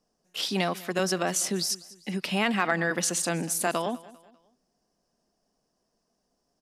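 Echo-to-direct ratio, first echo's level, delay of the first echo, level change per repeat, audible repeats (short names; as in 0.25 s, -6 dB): -19.5 dB, -20.0 dB, 0.198 s, -8.0 dB, 2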